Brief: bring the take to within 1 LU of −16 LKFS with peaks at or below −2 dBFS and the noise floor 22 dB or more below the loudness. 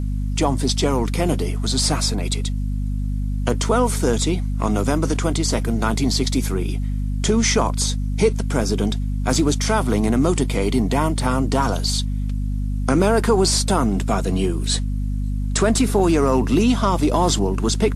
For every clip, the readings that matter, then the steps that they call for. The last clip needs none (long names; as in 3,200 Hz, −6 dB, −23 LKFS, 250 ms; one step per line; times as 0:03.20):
mains hum 50 Hz; hum harmonics up to 250 Hz; level of the hum −20 dBFS; integrated loudness −20.5 LKFS; sample peak −4.5 dBFS; target loudness −16.0 LKFS
→ hum removal 50 Hz, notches 5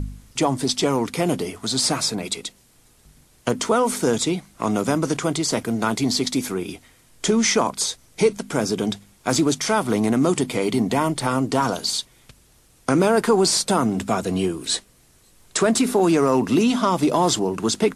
mains hum none found; integrated loudness −21.5 LKFS; sample peak −5.0 dBFS; target loudness −16.0 LKFS
→ level +5.5 dB
brickwall limiter −2 dBFS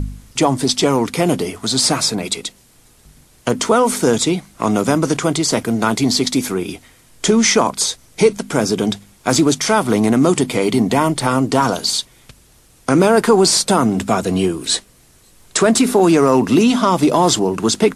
integrated loudness −16.0 LKFS; sample peak −2.0 dBFS; background noise floor −50 dBFS